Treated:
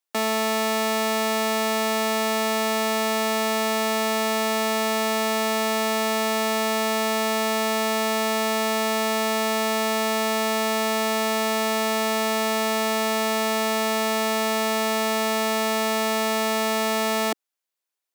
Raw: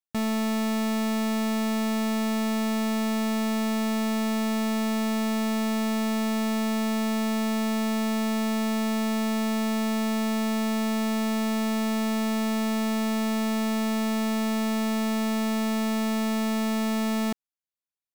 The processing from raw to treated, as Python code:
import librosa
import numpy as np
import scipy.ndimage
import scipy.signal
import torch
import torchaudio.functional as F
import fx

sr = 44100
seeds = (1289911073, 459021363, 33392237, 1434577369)

y = scipy.signal.sosfilt(scipy.signal.butter(4, 320.0, 'highpass', fs=sr, output='sos'), x)
y = y * librosa.db_to_amplitude(8.5)